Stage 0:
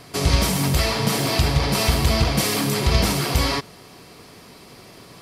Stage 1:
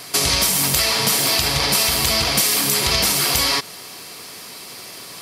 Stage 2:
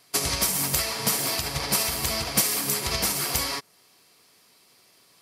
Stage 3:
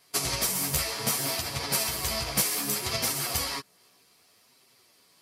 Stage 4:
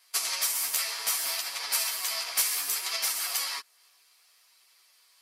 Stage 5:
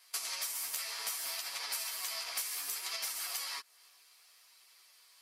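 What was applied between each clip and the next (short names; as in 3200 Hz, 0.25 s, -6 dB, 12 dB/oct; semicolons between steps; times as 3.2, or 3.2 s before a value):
tilt +3 dB/oct; compressor, threshold -20 dBFS, peak gain reduction 7.5 dB; gain +5.5 dB
dynamic EQ 3500 Hz, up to -5 dB, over -33 dBFS, Q 1.2; upward expander 2.5:1, over -30 dBFS; gain -1 dB
chorus voices 2, 0.65 Hz, delay 12 ms, depth 4.5 ms
HPF 1100 Hz 12 dB/oct
compressor 3:1, threshold -38 dBFS, peak gain reduction 13 dB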